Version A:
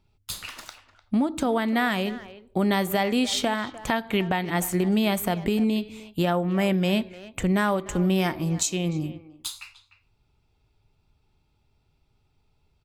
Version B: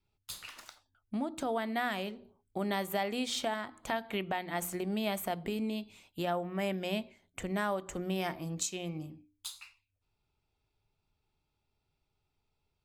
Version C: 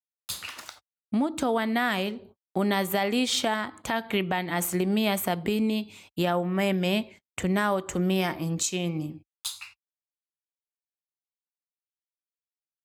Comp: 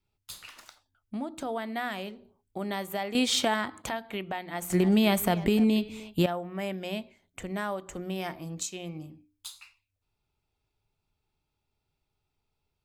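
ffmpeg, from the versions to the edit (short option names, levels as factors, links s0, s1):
-filter_complex "[1:a]asplit=3[s0][s1][s2];[s0]atrim=end=3.152[s3];[2:a]atrim=start=3.148:end=3.892[s4];[s1]atrim=start=3.888:end=4.702[s5];[0:a]atrim=start=4.698:end=6.262[s6];[s2]atrim=start=6.258[s7];[s3][s4]acrossfade=d=0.004:c1=hsin:c2=hsin[s8];[s8][s5]acrossfade=d=0.004:c1=hsin:c2=hsin[s9];[s9][s6]acrossfade=d=0.004:c1=hsin:c2=hsin[s10];[s10][s7]acrossfade=d=0.004:c1=hsin:c2=hsin"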